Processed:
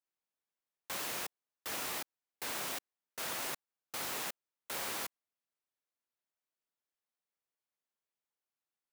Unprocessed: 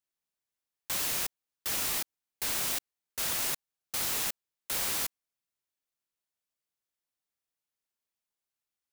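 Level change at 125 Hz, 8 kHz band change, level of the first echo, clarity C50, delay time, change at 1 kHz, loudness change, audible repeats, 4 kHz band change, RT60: -8.0 dB, -9.0 dB, none, none, none, -1.5 dB, -8.0 dB, none, -7.0 dB, none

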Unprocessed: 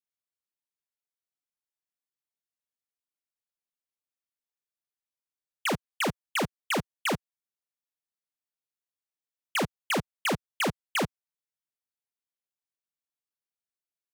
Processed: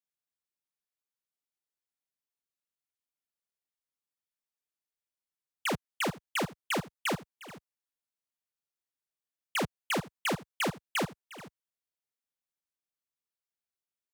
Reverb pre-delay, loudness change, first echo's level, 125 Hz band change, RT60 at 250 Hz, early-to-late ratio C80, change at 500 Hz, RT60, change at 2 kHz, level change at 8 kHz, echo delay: none, -3.0 dB, -18.0 dB, -2.5 dB, none, none, -3.0 dB, none, -3.0 dB, -3.0 dB, 0.356 s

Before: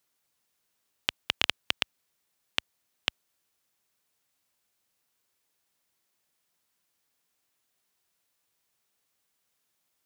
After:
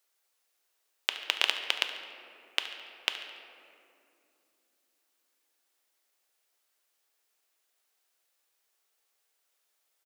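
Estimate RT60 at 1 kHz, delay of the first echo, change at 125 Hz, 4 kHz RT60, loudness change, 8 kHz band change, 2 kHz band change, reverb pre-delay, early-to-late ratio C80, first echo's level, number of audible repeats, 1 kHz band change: 2.3 s, 71 ms, under -25 dB, 1.3 s, 0.0 dB, +0.5 dB, +1.0 dB, 5 ms, 8.0 dB, -15.0 dB, 1, +0.5 dB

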